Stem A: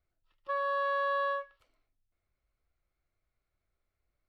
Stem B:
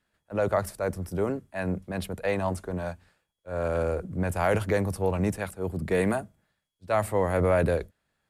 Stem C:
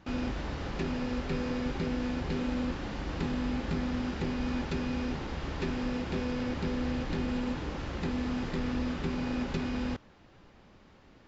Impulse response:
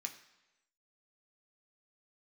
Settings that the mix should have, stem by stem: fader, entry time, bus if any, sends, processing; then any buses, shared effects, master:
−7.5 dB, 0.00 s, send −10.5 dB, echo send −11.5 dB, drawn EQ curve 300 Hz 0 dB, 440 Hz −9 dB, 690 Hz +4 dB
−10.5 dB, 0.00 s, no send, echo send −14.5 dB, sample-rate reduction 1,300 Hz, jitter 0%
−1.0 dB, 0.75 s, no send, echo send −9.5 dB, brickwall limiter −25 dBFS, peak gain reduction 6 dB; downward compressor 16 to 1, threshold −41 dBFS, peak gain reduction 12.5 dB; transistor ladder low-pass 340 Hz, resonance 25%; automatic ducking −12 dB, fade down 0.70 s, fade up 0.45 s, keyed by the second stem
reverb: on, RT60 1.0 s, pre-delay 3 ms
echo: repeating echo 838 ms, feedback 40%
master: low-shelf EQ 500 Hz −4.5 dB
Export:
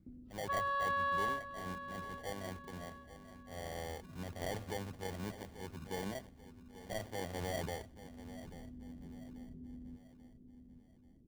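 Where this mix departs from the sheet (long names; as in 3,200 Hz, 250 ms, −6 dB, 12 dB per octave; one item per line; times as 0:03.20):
stem B −10.5 dB → −16.5 dB
stem C: entry 0.75 s → 0.00 s
master: missing low-shelf EQ 500 Hz −4.5 dB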